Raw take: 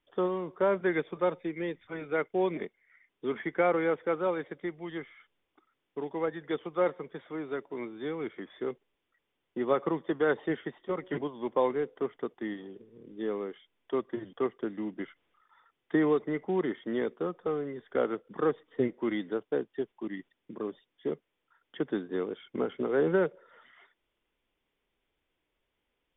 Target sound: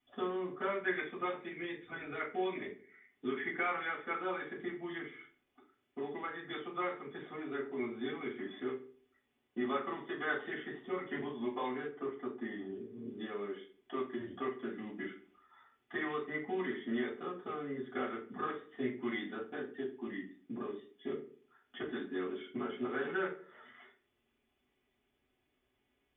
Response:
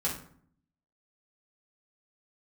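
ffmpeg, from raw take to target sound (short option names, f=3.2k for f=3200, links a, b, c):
-filter_complex "[0:a]asettb=1/sr,asplit=3[a][b][c];[a]atrim=end=11.894[d];[b]atrim=start=11.89:end=12.72,asetpts=PTS-STARTPTS,afade=t=in:d=0.004:c=qsin,afade=t=out:st=0.826:d=0.004:c=qsin,highshelf=f=3.3k:g=-11[e];[c]atrim=start=12.716[f];[d][e]acrossfade=d=0.004:c1=hsin:c2=qsin[g];[g][f]acrossfade=d=0.004:c1=qsin:c2=hsin,acrossover=split=1100[h][i];[h]acompressor=threshold=-41dB:ratio=6[j];[j][i]amix=inputs=2:normalize=0[k];[1:a]atrim=start_sample=2205,asetrate=66150,aresample=44100[l];[k][l]afir=irnorm=-1:irlink=0,volume=-2dB"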